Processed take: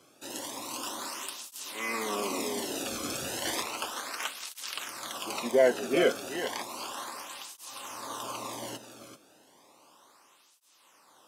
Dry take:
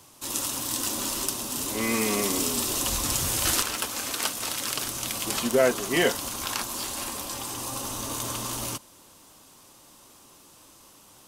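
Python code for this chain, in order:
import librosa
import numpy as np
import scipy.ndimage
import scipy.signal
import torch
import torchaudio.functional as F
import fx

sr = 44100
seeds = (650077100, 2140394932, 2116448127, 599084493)

y = fx.highpass(x, sr, hz=130.0, slope=6)
y = fx.high_shelf(y, sr, hz=5300.0, db=-12.0)
y = y + 10.0 ** (-10.0 / 20.0) * np.pad(y, (int(386 * sr / 1000.0), 0))[:len(y)]
y = fx.flanger_cancel(y, sr, hz=0.33, depth_ms=1.1)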